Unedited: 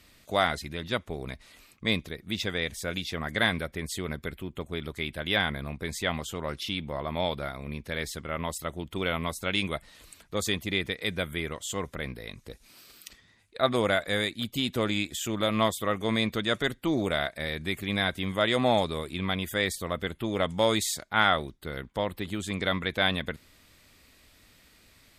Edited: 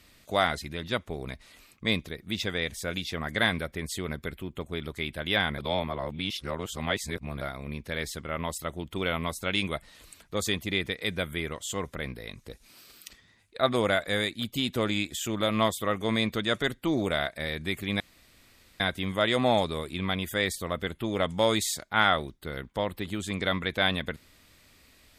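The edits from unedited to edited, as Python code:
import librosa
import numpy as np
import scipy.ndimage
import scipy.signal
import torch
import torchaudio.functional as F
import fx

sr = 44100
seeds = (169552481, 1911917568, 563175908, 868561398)

y = fx.edit(x, sr, fx.reverse_span(start_s=5.58, length_s=1.83),
    fx.insert_room_tone(at_s=18.0, length_s=0.8), tone=tone)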